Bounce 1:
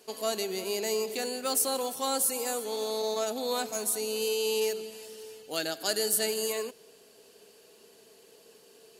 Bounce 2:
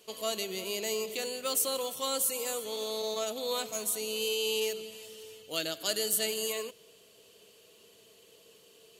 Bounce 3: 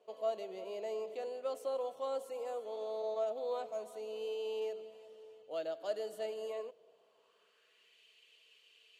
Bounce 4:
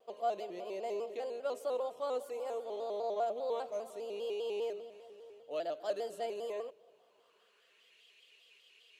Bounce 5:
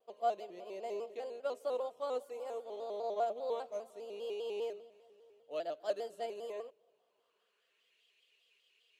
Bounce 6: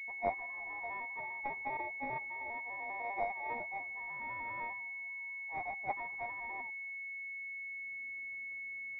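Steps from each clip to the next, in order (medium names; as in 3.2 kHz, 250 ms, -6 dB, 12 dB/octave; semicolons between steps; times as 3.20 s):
graphic EQ with 31 bands 100 Hz +8 dB, 250 Hz -8 dB, 400 Hz -5 dB, 800 Hz -10 dB, 1.6 kHz -7 dB, 3.15 kHz +6 dB, 5 kHz -5 dB, 10 kHz -4 dB
band-pass sweep 640 Hz -> 2.5 kHz, 6.83–8.02 s; trim +1.5 dB
vibrato with a chosen wave square 5 Hz, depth 100 cents; trim +1.5 dB
upward expansion 1.5:1, over -50 dBFS; trim +1.5 dB
ring modulator 1.4 kHz; class-D stage that switches slowly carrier 2.2 kHz; trim +4 dB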